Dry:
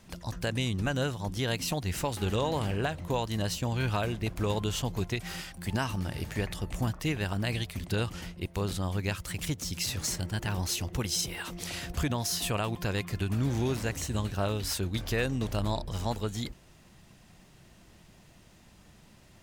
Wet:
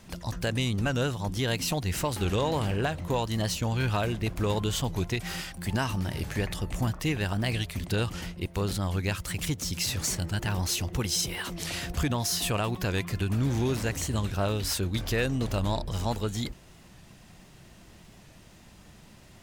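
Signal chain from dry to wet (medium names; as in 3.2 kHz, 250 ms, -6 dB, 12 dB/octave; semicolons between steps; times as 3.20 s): in parallel at -4 dB: saturation -32.5 dBFS, distortion -8 dB; on the sum: warped record 45 rpm, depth 100 cents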